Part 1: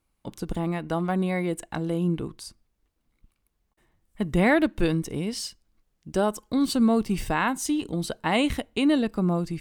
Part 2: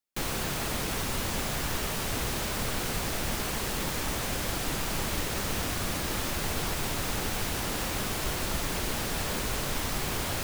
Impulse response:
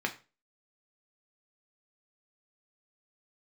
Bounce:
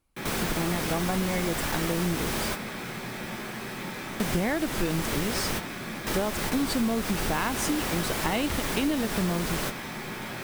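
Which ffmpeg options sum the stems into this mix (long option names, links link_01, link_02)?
-filter_complex "[0:a]volume=0.5dB,asplit=2[link_01][link_02];[1:a]volume=0dB,asplit=2[link_03][link_04];[link_04]volume=-9dB[link_05];[link_02]apad=whole_len=460007[link_06];[link_03][link_06]sidechaingate=range=-33dB:threshold=-45dB:ratio=16:detection=peak[link_07];[2:a]atrim=start_sample=2205[link_08];[link_05][link_08]afir=irnorm=-1:irlink=0[link_09];[link_01][link_07][link_09]amix=inputs=3:normalize=0,acompressor=threshold=-23dB:ratio=6"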